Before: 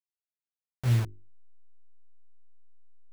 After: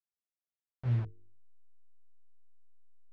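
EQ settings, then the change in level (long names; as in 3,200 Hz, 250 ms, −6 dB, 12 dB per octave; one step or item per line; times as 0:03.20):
head-to-tape spacing loss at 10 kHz 35 dB
mains-hum notches 50/100/150/200/250/300/350/400/450 Hz
−5.0 dB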